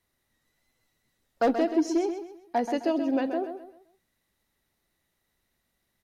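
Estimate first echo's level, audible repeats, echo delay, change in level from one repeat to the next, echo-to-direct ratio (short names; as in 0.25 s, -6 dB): -8.5 dB, 3, 0.13 s, -9.5 dB, -8.0 dB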